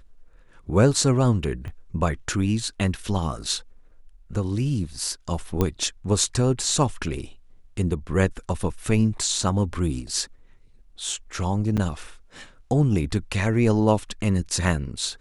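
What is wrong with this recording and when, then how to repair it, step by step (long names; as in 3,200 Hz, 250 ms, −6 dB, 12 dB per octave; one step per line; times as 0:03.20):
0:01.68: click −26 dBFS
0:05.61: click −9 dBFS
0:11.77–0:11.78: drop-out 6.8 ms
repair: click removal
repair the gap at 0:11.77, 6.8 ms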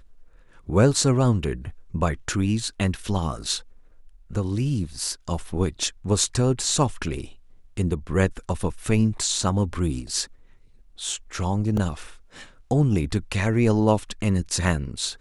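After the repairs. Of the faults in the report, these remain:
0:01.68: click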